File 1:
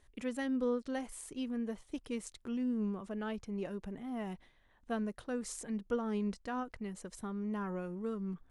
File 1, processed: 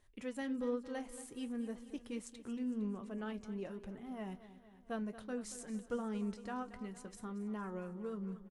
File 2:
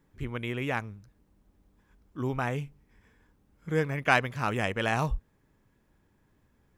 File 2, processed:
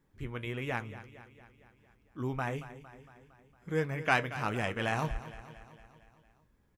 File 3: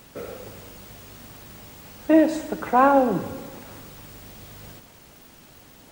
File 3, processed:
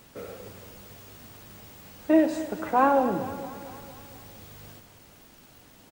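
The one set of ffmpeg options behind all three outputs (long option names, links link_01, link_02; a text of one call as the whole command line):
ffmpeg -i in.wav -af "flanger=delay=8.3:depth=2.7:regen=-65:speed=1.3:shape=triangular,aecho=1:1:229|458|687|916|1145|1374:0.188|0.111|0.0656|0.0387|0.0228|0.0135" out.wav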